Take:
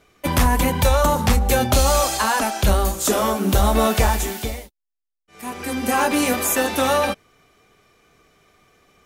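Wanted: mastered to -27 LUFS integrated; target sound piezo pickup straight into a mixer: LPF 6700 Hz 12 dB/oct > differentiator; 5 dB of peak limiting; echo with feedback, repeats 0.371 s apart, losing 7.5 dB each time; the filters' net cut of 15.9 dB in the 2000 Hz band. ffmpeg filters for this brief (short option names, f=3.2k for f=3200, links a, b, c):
-af "equalizer=f=2k:t=o:g=-6,alimiter=limit=-12.5dB:level=0:latency=1,lowpass=6.7k,aderivative,aecho=1:1:371|742|1113|1484|1855:0.422|0.177|0.0744|0.0312|0.0131,volume=7dB"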